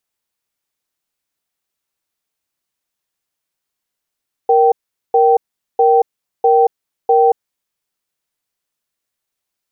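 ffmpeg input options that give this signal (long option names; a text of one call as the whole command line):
ffmpeg -f lavfi -i "aevalsrc='0.299*(sin(2*PI*468*t)+sin(2*PI*776*t))*clip(min(mod(t,0.65),0.23-mod(t,0.65))/0.005,0,1)':duration=3.12:sample_rate=44100" out.wav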